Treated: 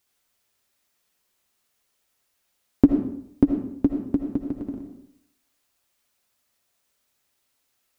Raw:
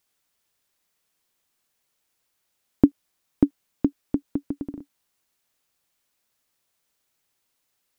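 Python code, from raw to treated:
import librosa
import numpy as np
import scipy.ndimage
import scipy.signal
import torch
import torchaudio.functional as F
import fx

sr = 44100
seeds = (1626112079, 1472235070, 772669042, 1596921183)

y = fx.notch_comb(x, sr, f0_hz=160.0)
y = fx.rev_freeverb(y, sr, rt60_s=0.71, hf_ratio=0.7, predelay_ms=40, drr_db=4.0)
y = y * librosa.db_to_amplitude(2.5)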